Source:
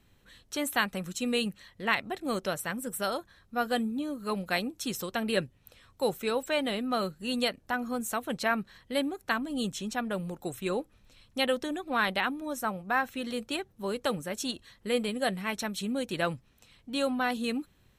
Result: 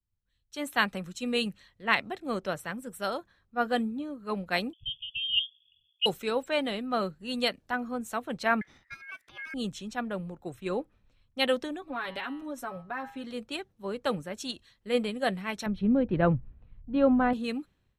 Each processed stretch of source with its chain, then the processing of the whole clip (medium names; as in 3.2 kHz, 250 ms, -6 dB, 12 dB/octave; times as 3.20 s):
4.73–6.06 s: frequency inversion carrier 3.4 kHz + brick-wall FIR band-stop 170–2500 Hz
8.61–9.54 s: compressor with a negative ratio -33 dBFS, ratio -0.5 + ring modulator 1.9 kHz
11.81–13.24 s: comb 7.2 ms, depth 79% + de-hum 161.3 Hz, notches 35 + compression 3:1, threshold -30 dBFS
15.66–17.33 s: boxcar filter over 6 samples + tilt EQ -3 dB/octave
whole clip: treble shelf 7.6 kHz -11.5 dB; level rider gain up to 5.5 dB; three bands expanded up and down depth 70%; trim -5.5 dB